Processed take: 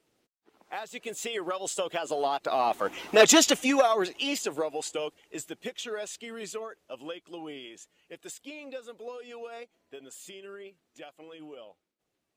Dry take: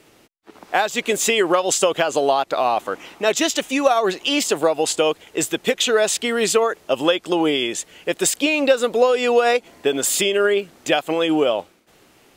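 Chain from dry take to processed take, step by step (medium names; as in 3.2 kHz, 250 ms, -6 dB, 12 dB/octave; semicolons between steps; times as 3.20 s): coarse spectral quantiser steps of 15 dB; Doppler pass-by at 3.26 s, 8 m/s, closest 1.6 m; transformer saturation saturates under 1.6 kHz; trim +4.5 dB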